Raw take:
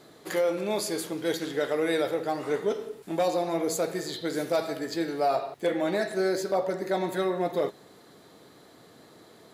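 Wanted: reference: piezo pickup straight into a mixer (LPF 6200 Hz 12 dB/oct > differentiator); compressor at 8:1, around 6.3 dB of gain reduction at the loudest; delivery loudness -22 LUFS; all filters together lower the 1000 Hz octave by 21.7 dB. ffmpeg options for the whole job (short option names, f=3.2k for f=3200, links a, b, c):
-af "equalizer=f=1k:t=o:g=-5,acompressor=threshold=-29dB:ratio=8,lowpass=6.2k,aderivative,volume=26.5dB"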